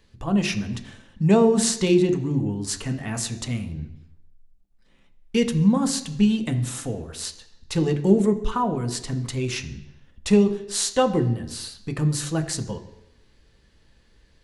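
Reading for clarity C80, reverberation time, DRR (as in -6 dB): 14.5 dB, 0.80 s, 6.0 dB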